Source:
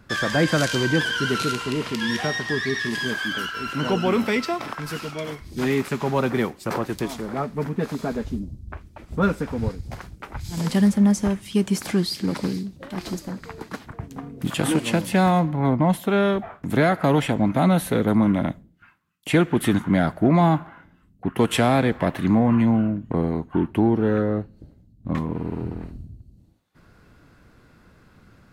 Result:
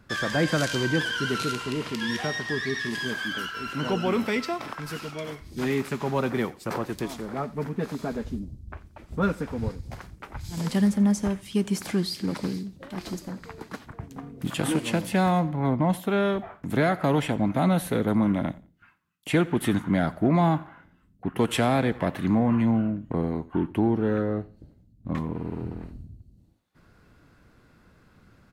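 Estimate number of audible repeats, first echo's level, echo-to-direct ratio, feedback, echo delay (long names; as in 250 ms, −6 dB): 2, −21.5 dB, −21.5 dB, 22%, 88 ms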